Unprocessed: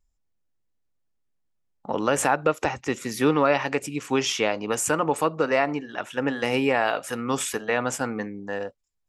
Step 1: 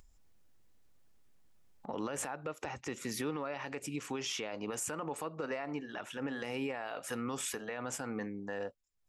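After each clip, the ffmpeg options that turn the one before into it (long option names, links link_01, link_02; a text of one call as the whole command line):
ffmpeg -i in.wav -af "acompressor=threshold=-26dB:ratio=4,alimiter=limit=-22dB:level=0:latency=1:release=30,acompressor=mode=upward:threshold=-43dB:ratio=2.5,volume=-5.5dB" out.wav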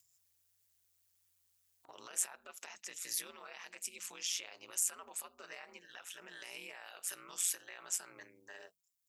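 ffmpeg -i in.wav -af "aeval=exprs='val(0)*sin(2*PI*89*n/s)':channel_layout=same,aderivative,bandreject=frequency=50:width_type=h:width=6,bandreject=frequency=100:width_type=h:width=6,bandreject=frequency=150:width_type=h:width=6,bandreject=frequency=200:width_type=h:width=6,volume=8dB" out.wav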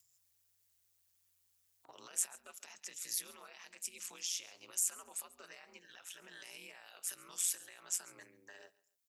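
ffmpeg -i in.wav -filter_complex "[0:a]acrossover=split=250|3500[link_01][link_02][link_03];[link_02]alimiter=level_in=19.5dB:limit=-24dB:level=0:latency=1:release=285,volume=-19.5dB[link_04];[link_01][link_04][link_03]amix=inputs=3:normalize=0,aecho=1:1:138|276:0.0891|0.0214" out.wav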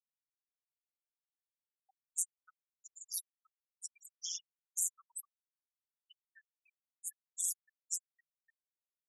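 ffmpeg -i in.wav -af "afftfilt=real='re*gte(hypot(re,im),0.0178)':imag='im*gte(hypot(re,im),0.0178)':win_size=1024:overlap=0.75" out.wav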